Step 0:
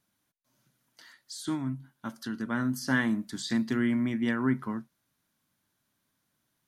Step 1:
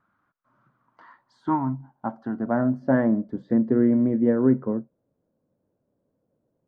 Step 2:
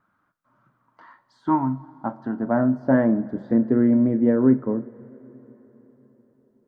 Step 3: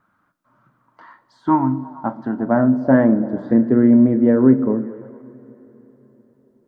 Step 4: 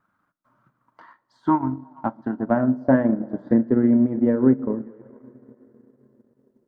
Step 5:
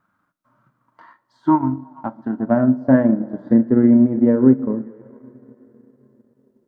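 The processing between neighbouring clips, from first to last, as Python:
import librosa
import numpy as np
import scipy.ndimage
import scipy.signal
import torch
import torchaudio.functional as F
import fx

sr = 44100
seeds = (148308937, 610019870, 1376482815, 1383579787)

y1 = fx.dynamic_eq(x, sr, hz=1700.0, q=1.3, threshold_db=-47.0, ratio=4.0, max_db=7)
y1 = fx.filter_sweep_lowpass(y1, sr, from_hz=1300.0, to_hz=510.0, start_s=0.44, end_s=3.45, q=5.1)
y1 = y1 * librosa.db_to_amplitude(5.0)
y2 = fx.rev_double_slope(y1, sr, seeds[0], early_s=0.29, late_s=4.4, knee_db=-18, drr_db=11.5)
y2 = y2 * librosa.db_to_amplitude(1.5)
y3 = fx.echo_stepped(y2, sr, ms=114, hz=240.0, octaves=0.7, feedback_pct=70, wet_db=-10.0)
y3 = y3 * librosa.db_to_amplitude(4.5)
y4 = fx.transient(y3, sr, attack_db=5, sustain_db=-7)
y4 = y4 * librosa.db_to_amplitude(-6.0)
y5 = fx.hpss(y4, sr, part='harmonic', gain_db=7)
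y5 = y5 * librosa.db_to_amplitude(-2.0)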